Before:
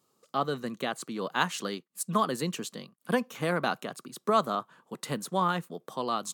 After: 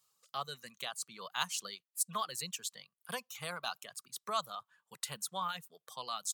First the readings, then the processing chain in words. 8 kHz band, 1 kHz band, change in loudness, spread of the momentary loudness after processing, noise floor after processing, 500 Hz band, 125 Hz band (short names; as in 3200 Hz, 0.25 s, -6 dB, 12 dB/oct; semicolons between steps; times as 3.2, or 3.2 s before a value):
+1.0 dB, -9.5 dB, -8.5 dB, 10 LU, under -85 dBFS, -15.5 dB, -16.5 dB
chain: passive tone stack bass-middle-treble 10-0-10; reverb removal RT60 1.1 s; dynamic EQ 1800 Hz, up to -7 dB, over -52 dBFS, Q 1.5; gain +2 dB